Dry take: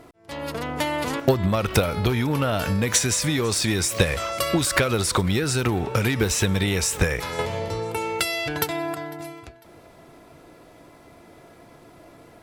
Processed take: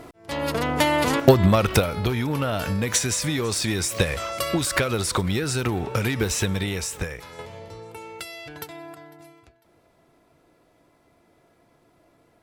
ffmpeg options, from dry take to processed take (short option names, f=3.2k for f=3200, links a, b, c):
-af "volume=5dB,afade=t=out:st=1.49:d=0.4:silence=0.446684,afade=t=out:st=6.4:d=0.84:silence=0.316228"